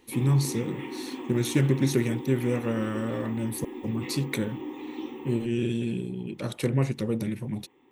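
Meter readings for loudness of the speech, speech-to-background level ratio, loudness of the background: −28.5 LKFS, 9.0 dB, −37.5 LKFS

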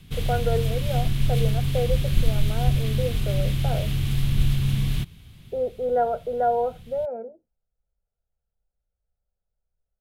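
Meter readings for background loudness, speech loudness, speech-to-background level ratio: −25.5 LKFS, −29.0 LKFS, −3.5 dB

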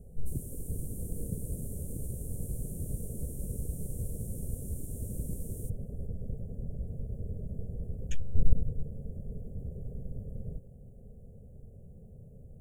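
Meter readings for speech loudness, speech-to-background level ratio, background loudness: −40.5 LKFS, 2.5 dB, −43.0 LKFS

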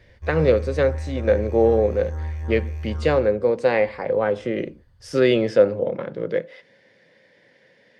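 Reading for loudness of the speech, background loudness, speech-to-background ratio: −21.5 LKFS, −31.0 LKFS, 9.5 dB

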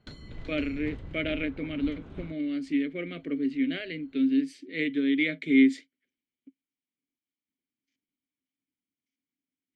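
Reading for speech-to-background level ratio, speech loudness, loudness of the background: 16.0 dB, −28.5 LKFS, −44.5 LKFS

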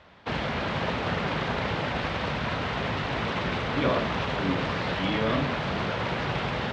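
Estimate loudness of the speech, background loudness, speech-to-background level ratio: −31.5 LKFS, −29.0 LKFS, −2.5 dB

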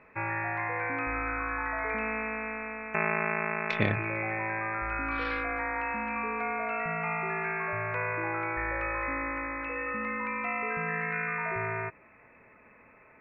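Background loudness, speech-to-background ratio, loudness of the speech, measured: −31.5 LKFS, −2.5 dB, −34.0 LKFS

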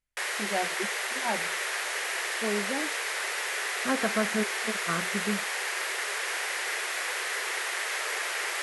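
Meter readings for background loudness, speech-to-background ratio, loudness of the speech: −30.0 LKFS, −4.0 dB, −34.0 LKFS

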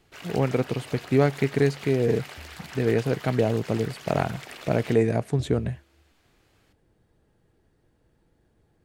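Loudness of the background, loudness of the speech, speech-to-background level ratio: −41.5 LKFS, −25.5 LKFS, 16.0 dB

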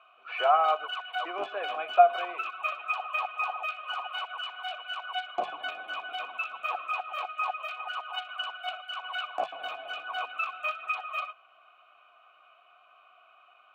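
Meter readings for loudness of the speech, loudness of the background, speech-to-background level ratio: −26.0 LKFS, −34.0 LKFS, 8.0 dB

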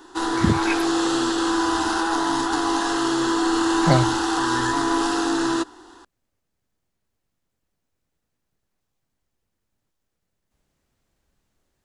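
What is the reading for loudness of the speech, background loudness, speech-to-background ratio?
−24.5 LKFS, −22.0 LKFS, −2.5 dB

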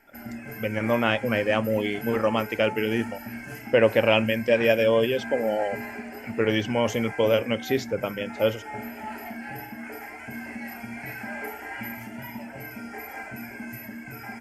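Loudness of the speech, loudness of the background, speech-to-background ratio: −24.5 LKFS, −37.0 LKFS, 12.5 dB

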